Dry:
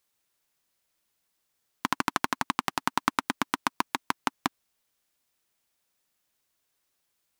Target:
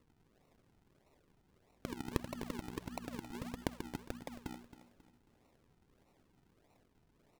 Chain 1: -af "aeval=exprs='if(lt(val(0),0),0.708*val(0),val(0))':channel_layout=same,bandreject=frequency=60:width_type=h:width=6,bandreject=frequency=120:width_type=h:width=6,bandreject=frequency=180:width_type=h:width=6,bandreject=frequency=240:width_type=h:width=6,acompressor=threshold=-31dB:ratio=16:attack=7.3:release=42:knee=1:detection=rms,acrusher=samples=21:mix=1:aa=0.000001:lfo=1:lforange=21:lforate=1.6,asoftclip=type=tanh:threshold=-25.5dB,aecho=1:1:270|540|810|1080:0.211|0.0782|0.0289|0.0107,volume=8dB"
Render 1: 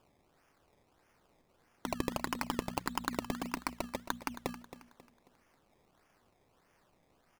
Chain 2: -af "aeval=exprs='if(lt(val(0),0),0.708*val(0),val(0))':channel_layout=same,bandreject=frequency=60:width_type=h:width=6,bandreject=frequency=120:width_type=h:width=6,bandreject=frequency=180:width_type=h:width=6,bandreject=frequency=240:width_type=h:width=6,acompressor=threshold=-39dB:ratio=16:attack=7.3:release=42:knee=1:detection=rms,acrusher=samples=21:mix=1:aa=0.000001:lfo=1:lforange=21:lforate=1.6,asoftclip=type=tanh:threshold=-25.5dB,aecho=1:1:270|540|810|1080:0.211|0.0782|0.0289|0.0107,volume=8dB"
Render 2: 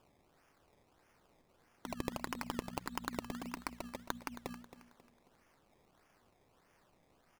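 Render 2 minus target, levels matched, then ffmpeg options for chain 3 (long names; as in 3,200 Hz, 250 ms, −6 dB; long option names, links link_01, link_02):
sample-and-hold swept by an LFO: distortion −6 dB
-af "aeval=exprs='if(lt(val(0),0),0.708*val(0),val(0))':channel_layout=same,bandreject=frequency=60:width_type=h:width=6,bandreject=frequency=120:width_type=h:width=6,bandreject=frequency=180:width_type=h:width=6,bandreject=frequency=240:width_type=h:width=6,acompressor=threshold=-39dB:ratio=16:attack=7.3:release=42:knee=1:detection=rms,acrusher=samples=54:mix=1:aa=0.000001:lfo=1:lforange=54:lforate=1.6,asoftclip=type=tanh:threshold=-25.5dB,aecho=1:1:270|540|810|1080:0.211|0.0782|0.0289|0.0107,volume=8dB"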